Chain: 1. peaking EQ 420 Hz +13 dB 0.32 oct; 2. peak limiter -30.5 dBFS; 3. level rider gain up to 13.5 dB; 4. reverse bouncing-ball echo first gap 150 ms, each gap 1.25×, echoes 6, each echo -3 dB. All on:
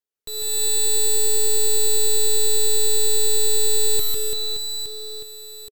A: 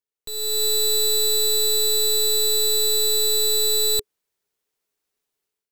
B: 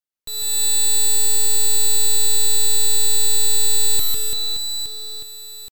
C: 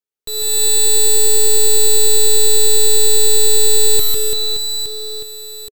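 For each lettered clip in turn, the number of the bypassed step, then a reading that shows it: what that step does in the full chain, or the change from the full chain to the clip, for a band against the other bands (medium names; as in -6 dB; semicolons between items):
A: 4, echo-to-direct 0.0 dB to none; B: 1, 500 Hz band -12.0 dB; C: 2, mean gain reduction 7.0 dB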